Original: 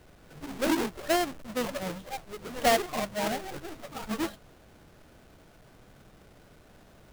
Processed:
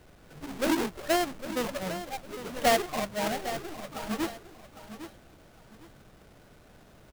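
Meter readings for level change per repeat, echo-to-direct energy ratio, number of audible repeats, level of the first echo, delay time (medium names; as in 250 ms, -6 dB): -11.0 dB, -11.5 dB, 2, -12.0 dB, 805 ms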